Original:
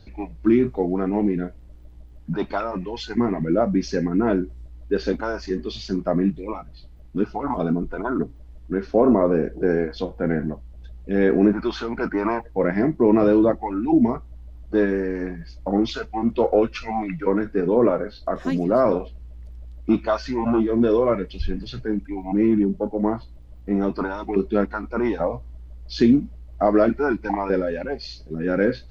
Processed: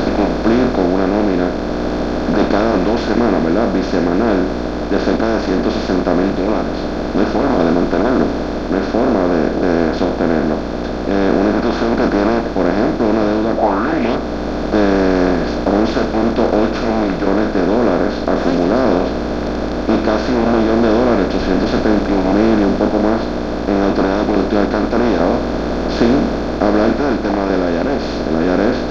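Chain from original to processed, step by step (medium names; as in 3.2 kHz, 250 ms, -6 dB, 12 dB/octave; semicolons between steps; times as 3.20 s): spectral levelling over time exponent 0.2; 13.57–14.14 s: peaking EQ 580 Hz -> 3.2 kHz +13.5 dB 0.77 oct; level rider; trim -1 dB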